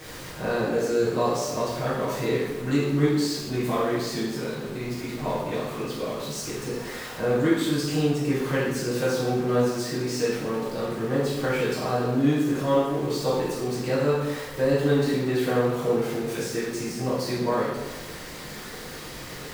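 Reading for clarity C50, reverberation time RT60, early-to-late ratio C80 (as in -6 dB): 0.0 dB, 1.1 s, 3.5 dB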